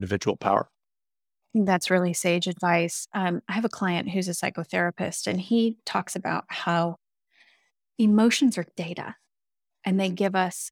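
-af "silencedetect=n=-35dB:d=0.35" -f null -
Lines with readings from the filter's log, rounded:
silence_start: 0.62
silence_end: 1.55 | silence_duration: 0.93
silence_start: 6.94
silence_end: 7.99 | silence_duration: 1.06
silence_start: 9.11
silence_end: 9.85 | silence_duration: 0.74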